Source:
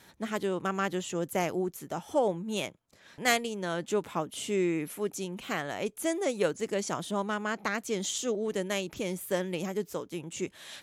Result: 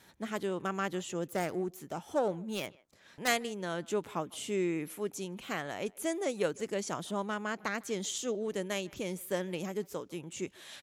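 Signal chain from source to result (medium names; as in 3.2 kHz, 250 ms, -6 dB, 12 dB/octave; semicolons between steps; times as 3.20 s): 1.28–3.28 s: self-modulated delay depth 0.17 ms; speakerphone echo 150 ms, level -24 dB; trim -3.5 dB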